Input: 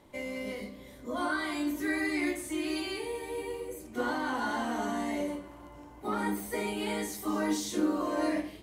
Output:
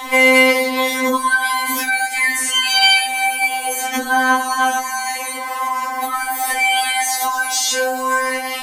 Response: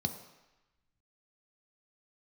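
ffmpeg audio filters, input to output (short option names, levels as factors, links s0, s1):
-filter_complex "[0:a]lowshelf=f=540:t=q:w=1.5:g=-13,acompressor=threshold=0.00447:ratio=2,apsyclip=56.2,acrossover=split=200|7000[s0][s1][s2];[s0]acompressor=threshold=0.0398:ratio=4[s3];[s1]acompressor=threshold=0.1:ratio=4[s4];[s2]acompressor=threshold=0.0447:ratio=4[s5];[s3][s4][s5]amix=inputs=3:normalize=0,afftfilt=real='re*3.46*eq(mod(b,12),0)':imag='im*3.46*eq(mod(b,12),0)':win_size=2048:overlap=0.75,volume=1.41"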